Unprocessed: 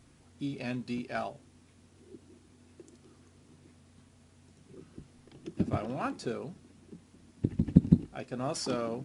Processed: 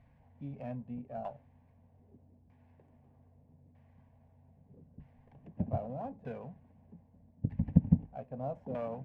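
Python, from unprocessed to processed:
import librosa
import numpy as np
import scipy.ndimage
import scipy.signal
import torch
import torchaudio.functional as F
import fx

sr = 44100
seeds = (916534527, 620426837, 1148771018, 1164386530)

y = fx.fixed_phaser(x, sr, hz=1300.0, stages=6)
y = fx.filter_lfo_lowpass(y, sr, shape='saw_down', hz=0.8, low_hz=460.0, high_hz=1600.0, q=0.96)
y = fx.running_max(y, sr, window=3)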